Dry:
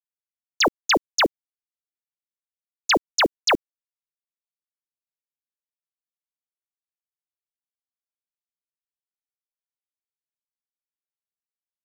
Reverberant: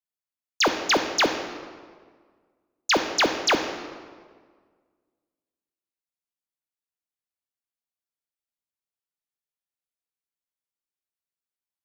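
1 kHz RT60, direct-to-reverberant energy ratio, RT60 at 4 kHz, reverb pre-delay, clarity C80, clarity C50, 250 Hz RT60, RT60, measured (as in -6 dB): 1.6 s, 5.5 dB, 1.2 s, 10 ms, 9.0 dB, 7.5 dB, 1.9 s, 1.7 s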